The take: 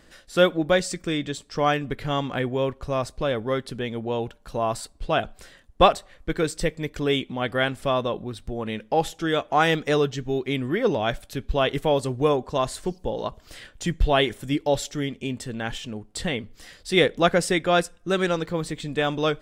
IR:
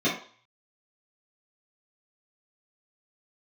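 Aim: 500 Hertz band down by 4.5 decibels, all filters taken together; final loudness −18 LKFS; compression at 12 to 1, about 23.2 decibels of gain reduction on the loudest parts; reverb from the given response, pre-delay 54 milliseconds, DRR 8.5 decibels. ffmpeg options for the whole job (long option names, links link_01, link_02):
-filter_complex "[0:a]equalizer=frequency=500:width_type=o:gain=-5.5,acompressor=threshold=-37dB:ratio=12,asplit=2[link_01][link_02];[1:a]atrim=start_sample=2205,adelay=54[link_03];[link_02][link_03]afir=irnorm=-1:irlink=0,volume=-22dB[link_04];[link_01][link_04]amix=inputs=2:normalize=0,volume=23dB"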